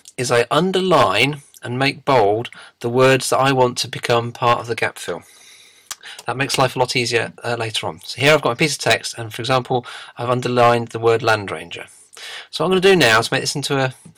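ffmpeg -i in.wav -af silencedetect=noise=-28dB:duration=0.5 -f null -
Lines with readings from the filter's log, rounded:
silence_start: 5.18
silence_end: 5.91 | silence_duration: 0.73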